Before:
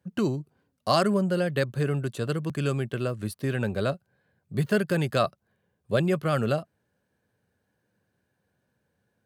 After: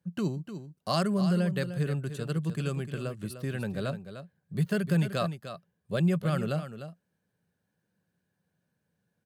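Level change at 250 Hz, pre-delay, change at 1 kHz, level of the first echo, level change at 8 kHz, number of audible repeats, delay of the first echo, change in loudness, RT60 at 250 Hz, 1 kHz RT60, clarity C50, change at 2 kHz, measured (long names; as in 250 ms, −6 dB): −1.5 dB, no reverb audible, −6.5 dB, −10.5 dB, −3.5 dB, 1, 301 ms, −3.5 dB, no reverb audible, no reverb audible, no reverb audible, −6.0 dB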